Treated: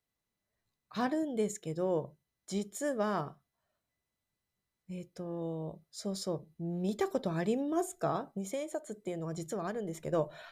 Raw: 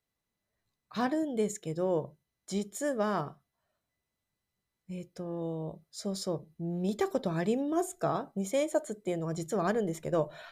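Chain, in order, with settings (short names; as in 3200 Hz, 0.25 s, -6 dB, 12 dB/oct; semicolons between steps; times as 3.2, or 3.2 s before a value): 8.33–10.07 compressor 4:1, threshold -32 dBFS, peak gain reduction 8.5 dB; gain -2 dB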